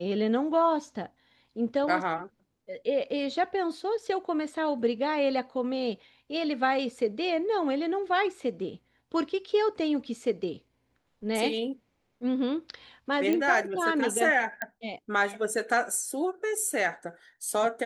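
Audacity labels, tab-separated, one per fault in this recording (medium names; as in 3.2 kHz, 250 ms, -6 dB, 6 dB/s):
13.330000	13.330000	pop -16 dBFS
14.620000	14.620000	pop -18 dBFS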